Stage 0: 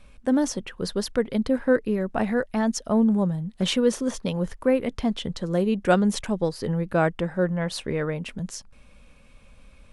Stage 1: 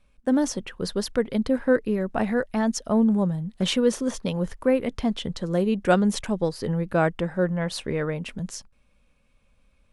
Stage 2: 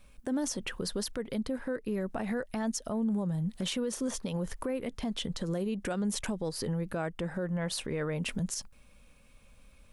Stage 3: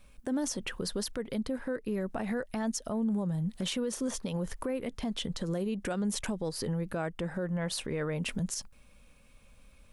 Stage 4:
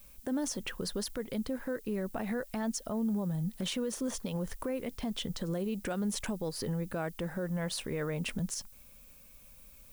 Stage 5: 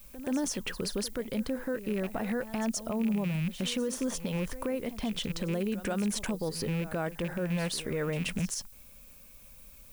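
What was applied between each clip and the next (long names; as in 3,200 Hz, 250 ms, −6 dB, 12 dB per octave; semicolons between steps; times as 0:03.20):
noise gate −43 dBFS, range −12 dB
high-shelf EQ 7,500 Hz +10.5 dB; downward compressor 5 to 1, threshold −33 dBFS, peak gain reduction 17 dB; brickwall limiter −29.5 dBFS, peak gain reduction 10 dB; level +5 dB
no processing that can be heard
background noise violet −56 dBFS; level −1.5 dB
loose part that buzzes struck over −36 dBFS, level −34 dBFS; backwards echo 128 ms −14 dB; level +2.5 dB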